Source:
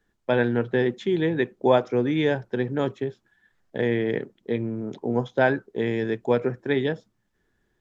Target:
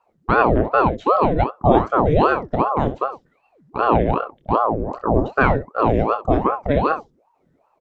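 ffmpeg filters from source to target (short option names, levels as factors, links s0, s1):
-af "tiltshelf=f=640:g=7,aecho=1:1:26|65:0.398|0.237,aeval=exprs='val(0)*sin(2*PI*550*n/s+550*0.75/2.6*sin(2*PI*2.6*n/s))':c=same,volume=1.78"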